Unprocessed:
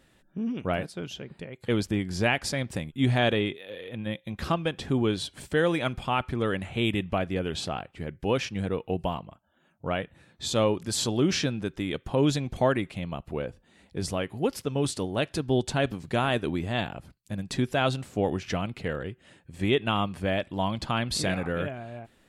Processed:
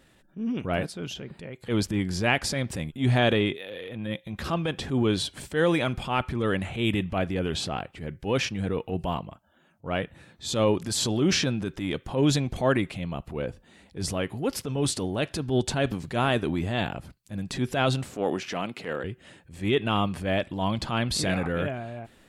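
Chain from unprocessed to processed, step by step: 18.14–19.04 HPF 240 Hz 12 dB/oct; transient shaper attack -8 dB, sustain +3 dB; gain +2.5 dB

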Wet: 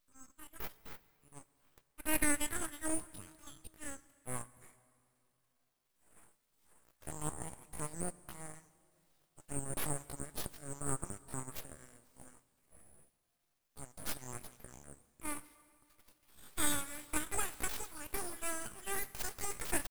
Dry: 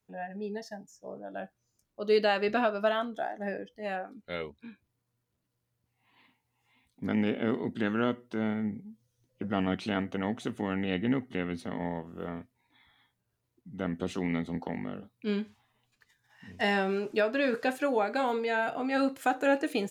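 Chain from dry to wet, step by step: elliptic high-pass 2900 Hz, stop band 80 dB; pitch shift +6.5 st; full-wave rectifier; reverb RT60 2.7 s, pre-delay 77 ms, DRR 19.5 dB; gain +11.5 dB

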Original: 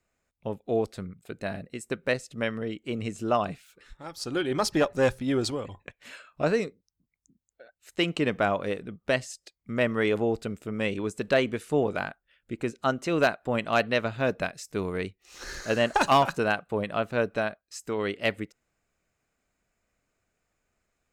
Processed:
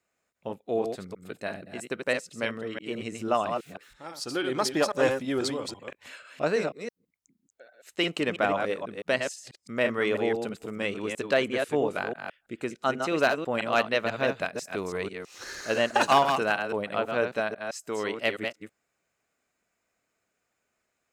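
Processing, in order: reverse delay 0.164 s, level -5.5 dB; HPF 290 Hz 6 dB/oct

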